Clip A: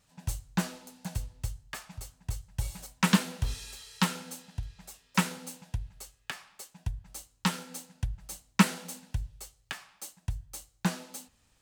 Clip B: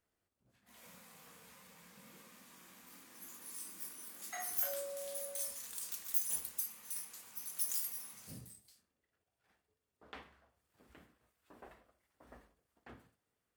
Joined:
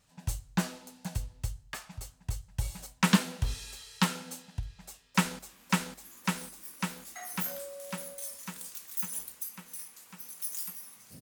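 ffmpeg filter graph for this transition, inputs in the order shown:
-filter_complex "[0:a]apad=whole_dur=11.21,atrim=end=11.21,atrim=end=5.392[s0];[1:a]atrim=start=2.558:end=8.38[s1];[s0][s1]acrossfade=d=0.004:c1=hsin:c2=hsin,asplit=2[s2][s3];[s3]afade=t=in:st=4.7:d=0.01,afade=t=out:st=5.39:d=0.01,aecho=0:1:550|1100|1650|2200|2750|3300|3850|4400|4950|5500|6050|6600:0.841395|0.588977|0.412284|0.288599|0.202019|0.141413|0.0989893|0.0692925|0.0485048|0.0339533|0.0237673|0.0166371[s4];[s2][s4]amix=inputs=2:normalize=0"

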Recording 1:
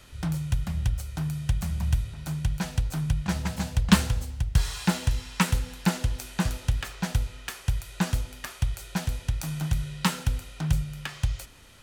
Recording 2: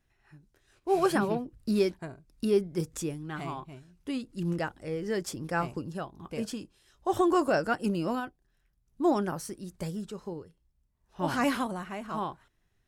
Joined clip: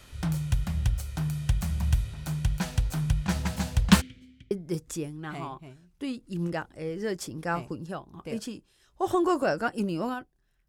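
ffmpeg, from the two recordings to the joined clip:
-filter_complex "[0:a]asplit=3[s0][s1][s2];[s0]afade=t=out:st=4:d=0.02[s3];[s1]asplit=3[s4][s5][s6];[s4]bandpass=f=270:t=q:w=8,volume=1[s7];[s5]bandpass=f=2290:t=q:w=8,volume=0.501[s8];[s6]bandpass=f=3010:t=q:w=8,volume=0.355[s9];[s7][s8][s9]amix=inputs=3:normalize=0,afade=t=in:st=4:d=0.02,afade=t=out:st=4.51:d=0.02[s10];[s2]afade=t=in:st=4.51:d=0.02[s11];[s3][s10][s11]amix=inputs=3:normalize=0,apad=whole_dur=10.68,atrim=end=10.68,atrim=end=4.512[s12];[1:a]atrim=start=2.568:end=8.74[s13];[s12][s13]acrossfade=d=0.004:c1=hsin:c2=hsin"

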